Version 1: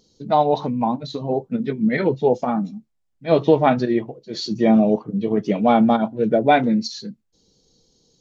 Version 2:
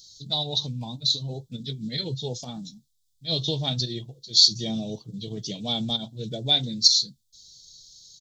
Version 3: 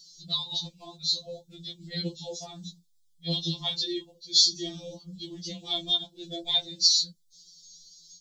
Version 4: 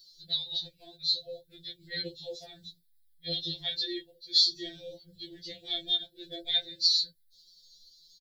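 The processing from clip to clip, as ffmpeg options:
ffmpeg -i in.wav -af "firequalizer=gain_entry='entry(130,0);entry(200,-15);entry(1200,-24);entry(2400,-14);entry(3500,14)':delay=0.05:min_phase=1" out.wav
ffmpeg -i in.wav -af "afftfilt=real='re*2.83*eq(mod(b,8),0)':imag='im*2.83*eq(mod(b,8),0)':win_size=2048:overlap=0.75" out.wav
ffmpeg -i in.wav -af "firequalizer=gain_entry='entry(120,0);entry(210,-26);entry(390,0);entry(600,-4);entry(1100,-28);entry(1600,8);entry(2800,-7);entry(4100,-1);entry(6300,-18);entry(11000,4)':delay=0.05:min_phase=1,volume=1dB" out.wav

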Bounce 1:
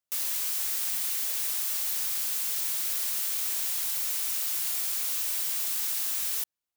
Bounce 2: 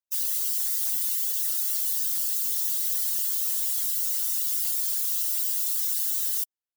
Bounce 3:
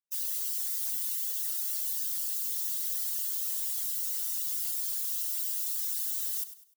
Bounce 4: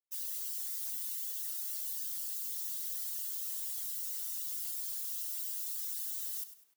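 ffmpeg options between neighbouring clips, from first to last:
ffmpeg -i in.wav -filter_complex "[0:a]bandreject=frequency=2400:width=8,afftdn=noise_reduction=15:noise_floor=-38,acrossover=split=100|7400[link_01][link_02][link_03];[link_02]acrusher=bits=3:mode=log:mix=0:aa=0.000001[link_04];[link_01][link_04][link_03]amix=inputs=3:normalize=0,volume=5dB" out.wav
ffmpeg -i in.wav -af "aecho=1:1:100|200|300:0.224|0.0716|0.0229,volume=-6dB" out.wav
ffmpeg -i in.wav -af "acrusher=bits=10:mix=0:aa=0.000001,highpass=90,flanger=delay=9.7:depth=8.5:regen=85:speed=0.33:shape=triangular,volume=-1.5dB" out.wav

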